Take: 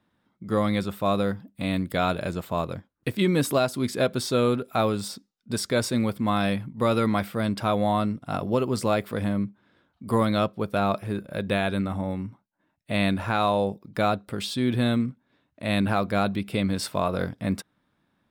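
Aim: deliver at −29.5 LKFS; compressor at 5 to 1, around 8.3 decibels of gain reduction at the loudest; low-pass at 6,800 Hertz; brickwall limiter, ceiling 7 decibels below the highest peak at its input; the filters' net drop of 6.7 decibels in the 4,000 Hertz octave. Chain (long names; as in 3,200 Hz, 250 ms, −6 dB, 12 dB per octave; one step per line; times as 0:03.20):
low-pass filter 6,800 Hz
parametric band 4,000 Hz −7.5 dB
downward compressor 5 to 1, threshold −28 dBFS
level +5 dB
brickwall limiter −18.5 dBFS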